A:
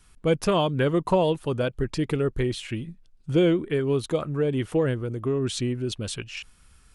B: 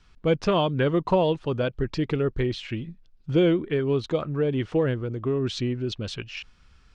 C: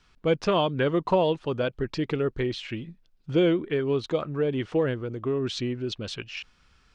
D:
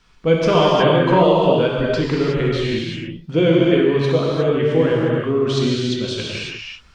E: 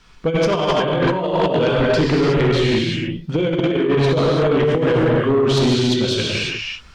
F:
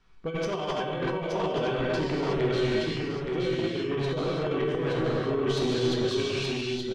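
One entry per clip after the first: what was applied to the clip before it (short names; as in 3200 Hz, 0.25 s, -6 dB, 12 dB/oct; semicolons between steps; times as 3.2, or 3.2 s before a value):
LPF 5500 Hz 24 dB/oct
low shelf 150 Hz -8 dB
non-linear reverb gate 0.39 s flat, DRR -4.5 dB; gain +4 dB
negative-ratio compressor -17 dBFS, ratio -0.5; sine folder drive 7 dB, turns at -4.5 dBFS; gain -7 dB
resonator 380 Hz, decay 0.44 s, harmonics all, mix 80%; on a send: echo 0.873 s -4 dB; on the sum: mismatched tape noise reduction decoder only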